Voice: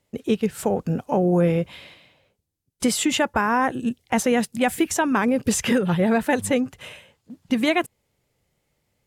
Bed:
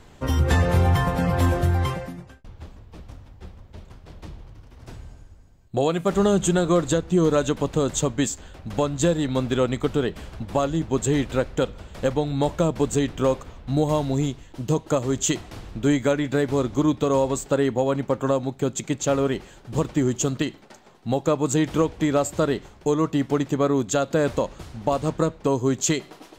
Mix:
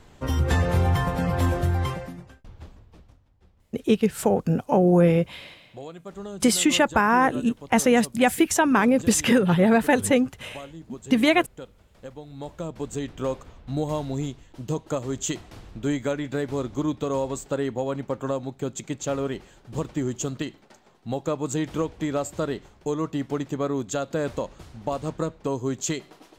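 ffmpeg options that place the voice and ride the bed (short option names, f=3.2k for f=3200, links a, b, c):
-filter_complex "[0:a]adelay=3600,volume=1.5dB[a];[1:a]volume=9.5dB,afade=t=out:st=2.6:d=0.6:silence=0.177828,afade=t=in:st=12.24:d=1.21:silence=0.251189[b];[a][b]amix=inputs=2:normalize=0"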